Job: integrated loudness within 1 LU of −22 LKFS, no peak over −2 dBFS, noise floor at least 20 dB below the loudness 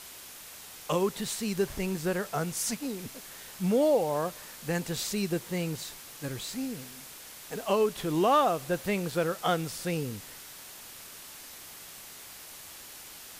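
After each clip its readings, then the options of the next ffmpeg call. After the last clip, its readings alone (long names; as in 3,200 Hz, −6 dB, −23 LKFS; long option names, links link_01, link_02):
background noise floor −47 dBFS; target noise floor −50 dBFS; integrated loudness −30.0 LKFS; sample peak −13.5 dBFS; target loudness −22.0 LKFS
→ -af "afftdn=noise_reduction=6:noise_floor=-47"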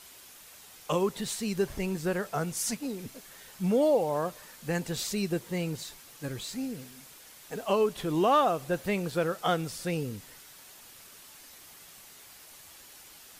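background noise floor −52 dBFS; integrated loudness −30.0 LKFS; sample peak −14.0 dBFS; target loudness −22.0 LKFS
→ -af "volume=8dB"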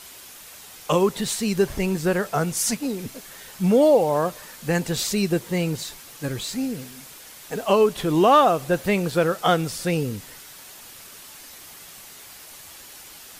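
integrated loudness −22.0 LKFS; sample peak −6.0 dBFS; background noise floor −44 dBFS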